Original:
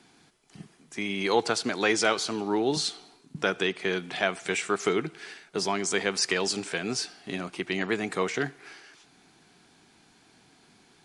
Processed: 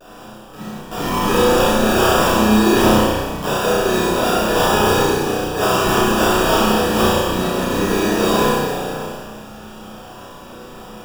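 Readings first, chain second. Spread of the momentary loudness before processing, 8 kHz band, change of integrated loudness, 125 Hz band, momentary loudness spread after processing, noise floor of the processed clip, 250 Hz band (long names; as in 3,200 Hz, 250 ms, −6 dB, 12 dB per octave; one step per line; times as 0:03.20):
10 LU, +8.5 dB, +12.0 dB, +16.5 dB, 18 LU, −38 dBFS, +14.5 dB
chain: high shelf with overshoot 3,300 Hz +11.5 dB, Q 1.5
in parallel at −2 dB: speech leveller within 3 dB
on the sum: pitch vibrato 1.7 Hz 96 cents
sample-rate reduction 2,100 Hz, jitter 0%
soft clipping −19.5 dBFS, distortion −5 dB
flutter between parallel walls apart 5.6 metres, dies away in 0.64 s
dense smooth reverb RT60 1.7 s, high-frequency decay 0.9×, DRR −9.5 dB
level −3 dB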